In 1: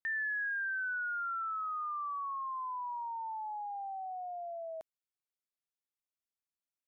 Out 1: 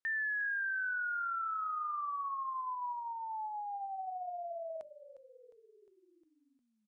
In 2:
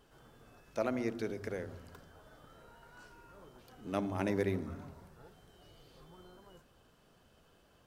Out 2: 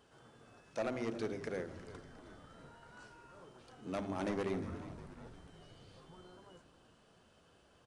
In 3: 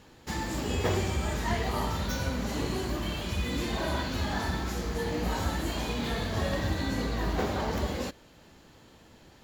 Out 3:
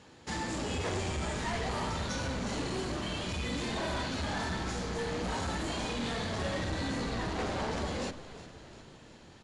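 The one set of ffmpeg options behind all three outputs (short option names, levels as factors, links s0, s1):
-filter_complex "[0:a]highpass=69,volume=33.5,asoftclip=hard,volume=0.0299,aresample=22050,aresample=44100,bandreject=f=50:t=h:w=6,bandreject=f=100:t=h:w=6,bandreject=f=150:t=h:w=6,bandreject=f=200:t=h:w=6,bandreject=f=250:t=h:w=6,bandreject=f=300:t=h:w=6,bandreject=f=350:t=h:w=6,bandreject=f=400:t=h:w=6,asplit=2[s0][s1];[s1]asplit=6[s2][s3][s4][s5][s6][s7];[s2]adelay=356,afreqshift=-74,volume=0.188[s8];[s3]adelay=712,afreqshift=-148,volume=0.114[s9];[s4]adelay=1068,afreqshift=-222,volume=0.0676[s10];[s5]adelay=1424,afreqshift=-296,volume=0.0407[s11];[s6]adelay=1780,afreqshift=-370,volume=0.0245[s12];[s7]adelay=2136,afreqshift=-444,volume=0.0146[s13];[s8][s9][s10][s11][s12][s13]amix=inputs=6:normalize=0[s14];[s0][s14]amix=inputs=2:normalize=0"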